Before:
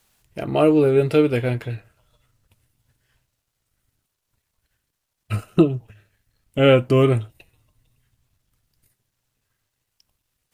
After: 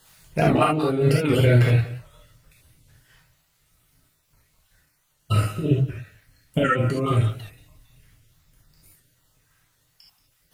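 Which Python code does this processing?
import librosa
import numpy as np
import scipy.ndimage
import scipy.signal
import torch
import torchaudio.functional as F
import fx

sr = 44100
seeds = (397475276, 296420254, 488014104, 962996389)

y = fx.spec_dropout(x, sr, seeds[0], share_pct=23)
y = fx.over_compress(y, sr, threshold_db=-24.0, ratio=-1.0)
y = y + 10.0 ** (-17.5 / 20.0) * np.pad(y, (int(180 * sr / 1000.0), 0))[:len(y)]
y = fx.rev_gated(y, sr, seeds[1], gate_ms=100, shape='flat', drr_db=-4.5)
y = fx.record_warp(y, sr, rpm=78.0, depth_cents=100.0)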